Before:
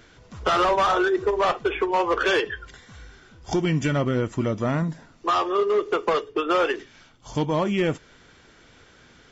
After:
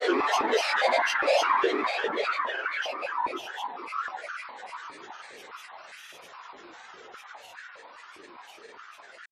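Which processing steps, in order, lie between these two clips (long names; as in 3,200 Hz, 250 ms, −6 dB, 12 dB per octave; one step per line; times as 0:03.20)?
downward compressor 2 to 1, threshold −30 dBFS, peak gain reduction 7 dB
extreme stretch with random phases 9.1×, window 0.50 s, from 0:02.25
echo through a band-pass that steps 350 ms, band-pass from 2,600 Hz, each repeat −0.7 octaves, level −1.5 dB
granular cloud 100 ms, grains 20 per second, pitch spread up and down by 12 semitones
high-pass on a step sequencer 4.9 Hz 360–1,500 Hz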